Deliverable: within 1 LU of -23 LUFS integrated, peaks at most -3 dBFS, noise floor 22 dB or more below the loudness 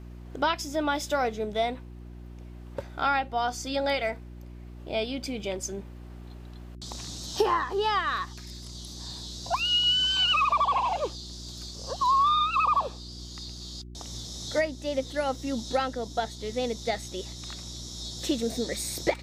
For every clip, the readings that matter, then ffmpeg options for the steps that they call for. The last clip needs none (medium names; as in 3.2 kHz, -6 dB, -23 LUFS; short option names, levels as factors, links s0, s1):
hum 60 Hz; highest harmonic 360 Hz; hum level -41 dBFS; loudness -28.0 LUFS; peak level -12.0 dBFS; loudness target -23.0 LUFS
-> -af "bandreject=f=60:t=h:w=4,bandreject=f=120:t=h:w=4,bandreject=f=180:t=h:w=4,bandreject=f=240:t=h:w=4,bandreject=f=300:t=h:w=4,bandreject=f=360:t=h:w=4"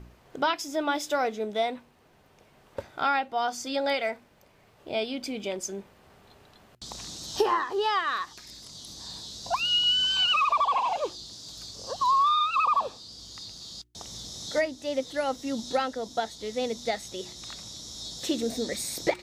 hum not found; loudness -27.5 LUFS; peak level -12.0 dBFS; loudness target -23.0 LUFS
-> -af "volume=1.68"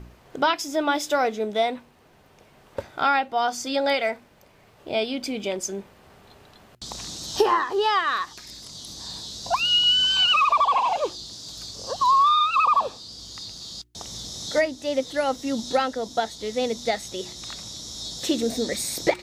loudness -23.0 LUFS; peak level -7.5 dBFS; noise floor -55 dBFS